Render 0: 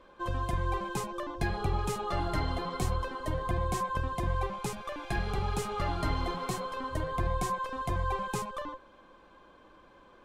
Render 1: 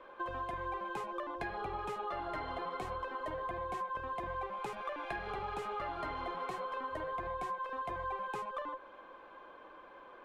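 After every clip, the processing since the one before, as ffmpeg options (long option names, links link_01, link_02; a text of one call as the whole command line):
ffmpeg -i in.wav -filter_complex "[0:a]acrossover=split=350 3000:gain=0.158 1 0.141[link_01][link_02][link_03];[link_01][link_02][link_03]amix=inputs=3:normalize=0,acompressor=threshold=-42dB:ratio=5,volume=5dB" out.wav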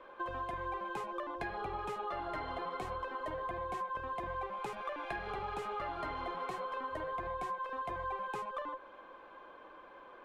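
ffmpeg -i in.wav -af anull out.wav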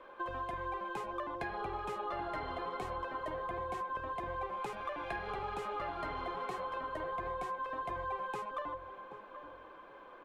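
ffmpeg -i in.wav -filter_complex "[0:a]asplit=2[link_01][link_02];[link_02]adelay=778,lowpass=frequency=870:poles=1,volume=-9dB,asplit=2[link_03][link_04];[link_04]adelay=778,lowpass=frequency=870:poles=1,volume=0.33,asplit=2[link_05][link_06];[link_06]adelay=778,lowpass=frequency=870:poles=1,volume=0.33,asplit=2[link_07][link_08];[link_08]adelay=778,lowpass=frequency=870:poles=1,volume=0.33[link_09];[link_01][link_03][link_05][link_07][link_09]amix=inputs=5:normalize=0" out.wav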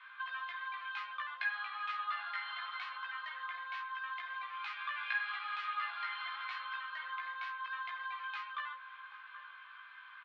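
ffmpeg -i in.wav -filter_complex "[0:a]asuperpass=centerf=2400:order=8:qfactor=0.78,asplit=2[link_01][link_02];[link_02]adelay=17,volume=-3dB[link_03];[link_01][link_03]amix=inputs=2:normalize=0,volume=6dB" out.wav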